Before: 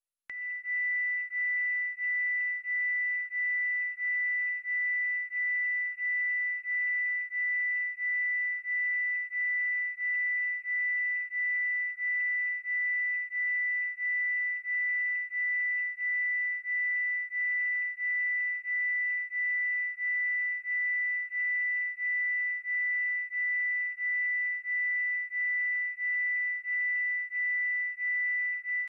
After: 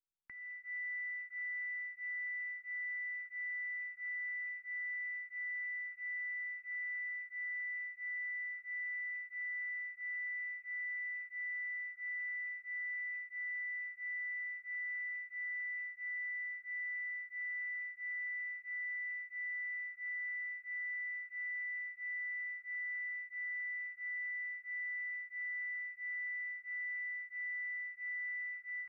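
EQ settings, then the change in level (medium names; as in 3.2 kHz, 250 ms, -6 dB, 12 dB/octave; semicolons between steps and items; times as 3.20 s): distance through air 360 m; peaking EQ 1.5 kHz -6.5 dB 1.5 oct; static phaser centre 1.4 kHz, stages 4; 0.0 dB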